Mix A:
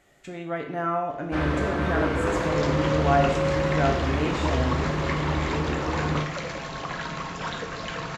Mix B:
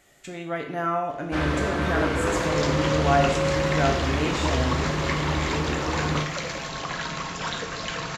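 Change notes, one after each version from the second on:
master: add high shelf 3300 Hz +9 dB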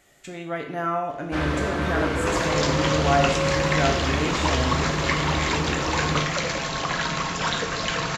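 second sound +5.0 dB

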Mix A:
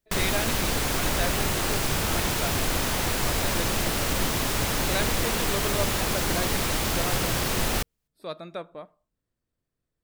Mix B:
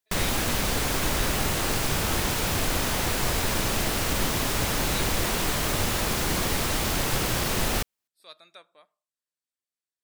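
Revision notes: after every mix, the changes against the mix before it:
speech: add band-pass 7600 Hz, Q 0.52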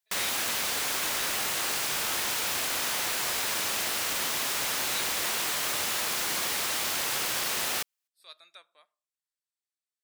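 master: add HPF 1300 Hz 6 dB/oct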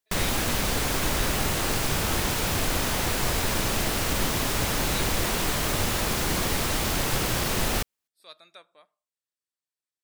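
master: remove HPF 1300 Hz 6 dB/oct

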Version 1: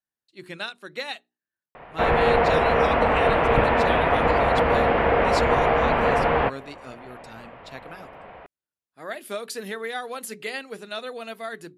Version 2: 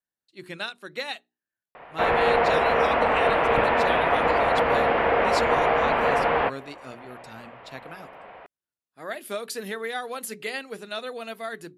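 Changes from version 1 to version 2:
speech: add bell 12000 Hz +2.5 dB 0.34 oct; background: add low shelf 210 Hz -11.5 dB

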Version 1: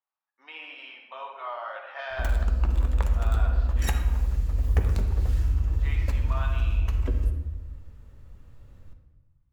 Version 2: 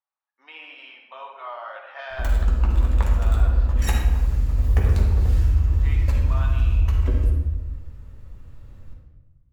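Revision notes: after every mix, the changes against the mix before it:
background: send +8.5 dB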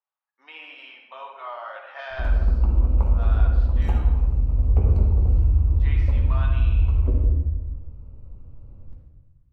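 background: add running mean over 25 samples

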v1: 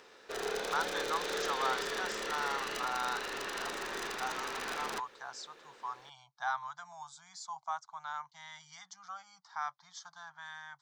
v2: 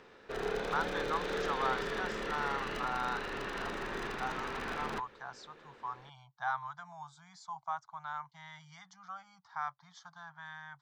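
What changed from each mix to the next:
master: add tone controls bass +12 dB, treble -12 dB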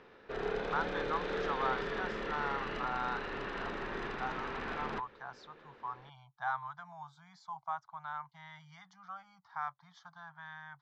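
master: add air absorption 140 m

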